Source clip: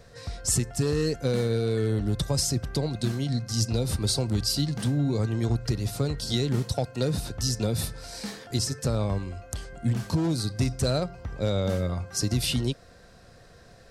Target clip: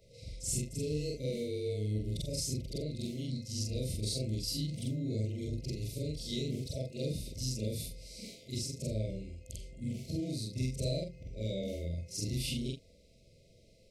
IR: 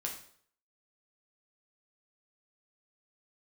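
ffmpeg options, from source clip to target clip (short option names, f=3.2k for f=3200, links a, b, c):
-af "afftfilt=real='re':imag='-im':win_size=4096:overlap=0.75,afftfilt=real='re*(1-between(b*sr/4096,670,2000))':imag='im*(1-between(b*sr/4096,670,2000))':win_size=4096:overlap=0.75,volume=-5dB"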